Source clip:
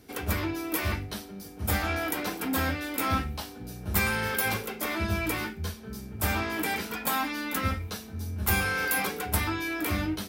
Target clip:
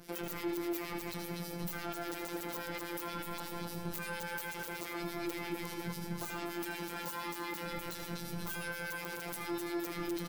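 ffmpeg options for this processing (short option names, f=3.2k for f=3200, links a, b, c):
-filter_complex "[0:a]acrossover=split=550|900[a][b][c];[a]asoftclip=type=tanh:threshold=-26.5dB[d];[d][b][c]amix=inputs=3:normalize=0,acrossover=split=1800[e][f];[e]aeval=exprs='val(0)*(1-0.7/2+0.7/2*cos(2*PI*8.5*n/s))':c=same[g];[f]aeval=exprs='val(0)*(1-0.7/2-0.7/2*cos(2*PI*8.5*n/s))':c=same[h];[g][h]amix=inputs=2:normalize=0,aecho=1:1:251|502|753|1004:0.398|0.151|0.0575|0.0218,afftfilt=real='hypot(re,im)*cos(PI*b)':imag='0':win_size=1024:overlap=0.75,acompressor=threshold=-38dB:ratio=6,adynamicequalizer=threshold=0.00112:dfrequency=370:dqfactor=2.3:tfrequency=370:tqfactor=2.3:attack=5:release=100:ratio=0.375:range=2:mode=boostabove:tftype=bell,aeval=exprs='(mod(17.8*val(0)+1,2)-1)/17.8':c=same,asplit=2[i][j];[j]adelay=79,lowpass=f=4.5k:p=1,volume=-7.5dB,asplit=2[k][l];[l]adelay=79,lowpass=f=4.5k:p=1,volume=0.53,asplit=2[m][n];[n]adelay=79,lowpass=f=4.5k:p=1,volume=0.53,asplit=2[o][p];[p]adelay=79,lowpass=f=4.5k:p=1,volume=0.53,asplit=2[q][r];[r]adelay=79,lowpass=f=4.5k:p=1,volume=0.53,asplit=2[s][t];[t]adelay=79,lowpass=f=4.5k:p=1,volume=0.53[u];[k][m][o][q][s][u]amix=inputs=6:normalize=0[v];[i][v]amix=inputs=2:normalize=0,alimiter=level_in=9dB:limit=-24dB:level=0:latency=1:release=86,volume=-9dB,volume=8.5dB"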